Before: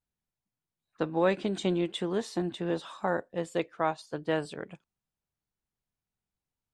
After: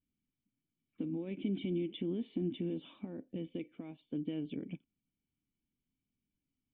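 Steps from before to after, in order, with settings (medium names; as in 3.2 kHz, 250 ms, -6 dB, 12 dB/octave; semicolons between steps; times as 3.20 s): compression, threshold -33 dBFS, peak gain reduction 13 dB; peak limiter -31 dBFS, peak gain reduction 11.5 dB; cascade formant filter i; trim +13.5 dB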